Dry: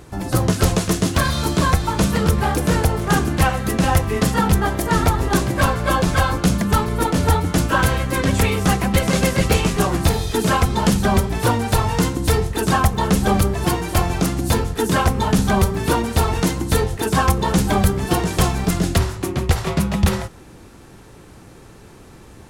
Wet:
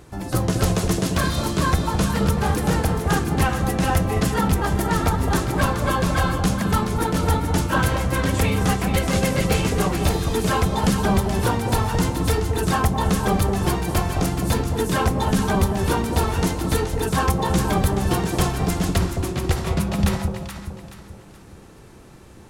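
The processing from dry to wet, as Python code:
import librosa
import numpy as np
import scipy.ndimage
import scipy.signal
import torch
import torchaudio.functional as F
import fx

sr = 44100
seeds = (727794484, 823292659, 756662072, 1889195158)

y = fx.echo_alternate(x, sr, ms=213, hz=900.0, feedback_pct=60, wet_db=-4.0)
y = y * 10.0 ** (-4.0 / 20.0)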